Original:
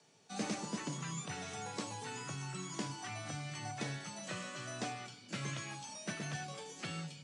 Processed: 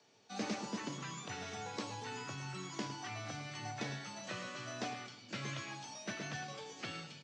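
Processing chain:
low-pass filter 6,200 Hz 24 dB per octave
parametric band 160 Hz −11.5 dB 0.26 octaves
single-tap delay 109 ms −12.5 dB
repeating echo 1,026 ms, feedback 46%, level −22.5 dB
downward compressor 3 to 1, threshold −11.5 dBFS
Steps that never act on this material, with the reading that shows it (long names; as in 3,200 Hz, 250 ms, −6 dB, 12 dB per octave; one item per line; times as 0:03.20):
downward compressor, threshold −11.5 dBFS: peak of its input −25.5 dBFS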